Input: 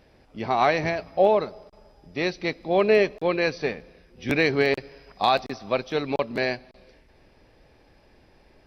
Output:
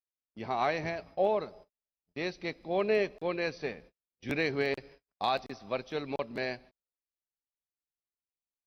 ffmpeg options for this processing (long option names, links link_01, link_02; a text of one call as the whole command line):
ffmpeg -i in.wav -af "agate=range=-46dB:threshold=-43dB:ratio=16:detection=peak,volume=-9dB" out.wav